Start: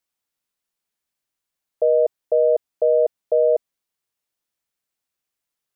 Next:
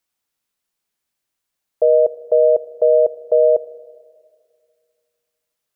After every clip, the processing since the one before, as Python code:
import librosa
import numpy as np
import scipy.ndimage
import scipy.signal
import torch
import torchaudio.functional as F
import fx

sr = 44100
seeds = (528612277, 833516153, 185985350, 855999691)

y = fx.rev_schroeder(x, sr, rt60_s=2.1, comb_ms=26, drr_db=15.0)
y = F.gain(torch.from_numpy(y), 4.0).numpy()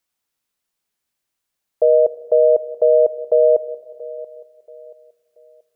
y = fx.echo_feedback(x, sr, ms=681, feedback_pct=35, wet_db=-18.5)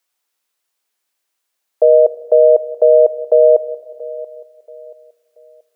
y = scipy.signal.sosfilt(scipy.signal.butter(2, 390.0, 'highpass', fs=sr, output='sos'), x)
y = F.gain(torch.from_numpy(y), 5.0).numpy()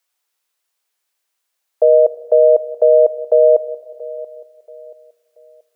y = scipy.signal.sosfilt(scipy.signal.bessel(2, 350.0, 'highpass', norm='mag', fs=sr, output='sos'), x)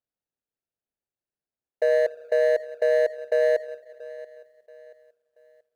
y = scipy.ndimage.median_filter(x, 41, mode='constant')
y = F.gain(torch.from_numpy(y), -8.5).numpy()